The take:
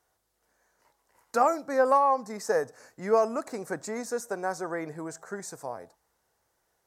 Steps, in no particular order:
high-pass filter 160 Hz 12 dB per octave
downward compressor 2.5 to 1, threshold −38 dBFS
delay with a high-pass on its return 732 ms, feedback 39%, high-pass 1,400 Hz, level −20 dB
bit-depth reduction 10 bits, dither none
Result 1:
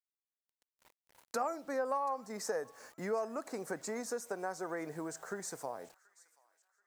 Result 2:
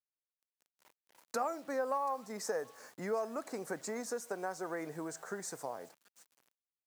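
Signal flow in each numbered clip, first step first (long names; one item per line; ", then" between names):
high-pass filter, then bit-depth reduction, then downward compressor, then delay with a high-pass on its return
downward compressor, then delay with a high-pass on its return, then bit-depth reduction, then high-pass filter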